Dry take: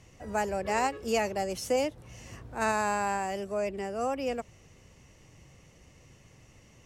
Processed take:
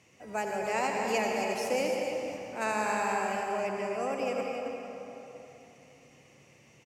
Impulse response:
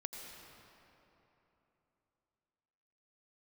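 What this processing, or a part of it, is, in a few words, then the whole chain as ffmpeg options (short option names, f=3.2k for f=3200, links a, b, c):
stadium PA: -filter_complex "[0:a]highpass=180,equalizer=f=2.4k:t=o:w=0.32:g=7,aecho=1:1:148.7|271.1:0.282|0.398[a];[1:a]atrim=start_sample=2205[b];[a][b]afir=irnorm=-1:irlink=0"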